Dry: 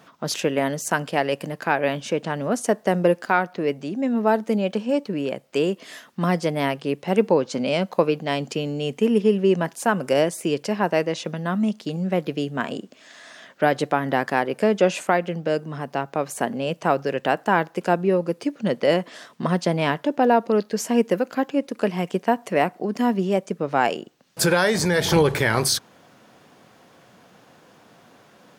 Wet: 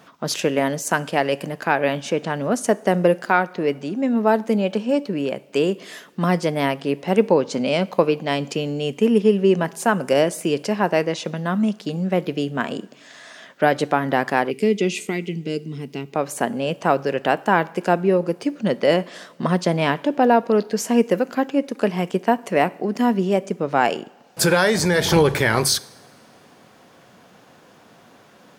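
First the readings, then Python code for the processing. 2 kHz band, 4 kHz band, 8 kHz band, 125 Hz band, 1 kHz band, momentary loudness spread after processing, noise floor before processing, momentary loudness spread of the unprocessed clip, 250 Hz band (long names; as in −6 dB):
+2.0 dB, +2.0 dB, +2.0 dB, +2.0 dB, +2.0 dB, 9 LU, −54 dBFS, 8 LU, +2.0 dB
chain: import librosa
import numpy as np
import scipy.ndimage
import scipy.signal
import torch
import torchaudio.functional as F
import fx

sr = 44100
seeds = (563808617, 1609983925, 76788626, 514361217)

y = fx.rev_double_slope(x, sr, seeds[0], early_s=0.63, late_s=2.5, knee_db=-15, drr_db=18.0)
y = fx.spec_box(y, sr, start_s=14.51, length_s=1.63, low_hz=460.0, high_hz=1900.0, gain_db=-18)
y = y * librosa.db_to_amplitude(2.0)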